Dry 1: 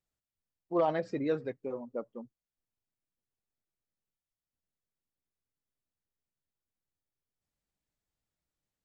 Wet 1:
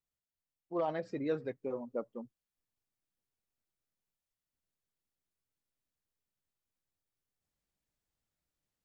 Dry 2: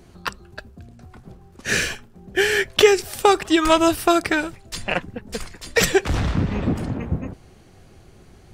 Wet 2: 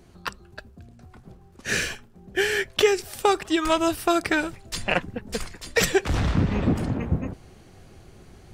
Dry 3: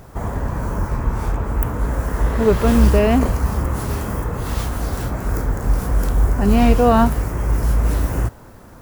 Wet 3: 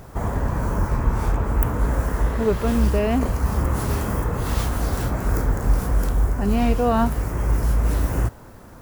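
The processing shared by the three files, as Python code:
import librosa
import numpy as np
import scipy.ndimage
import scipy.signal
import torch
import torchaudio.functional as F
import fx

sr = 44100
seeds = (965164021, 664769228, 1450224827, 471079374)

y = fx.rider(x, sr, range_db=3, speed_s=0.5)
y = y * librosa.db_to_amplitude(-3.0)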